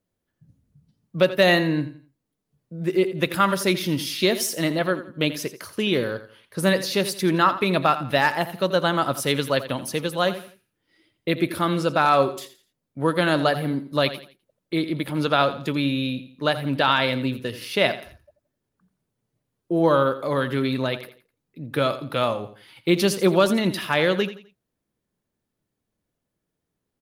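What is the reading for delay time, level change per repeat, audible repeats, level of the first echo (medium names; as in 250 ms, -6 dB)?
85 ms, -10.0 dB, 3, -13.5 dB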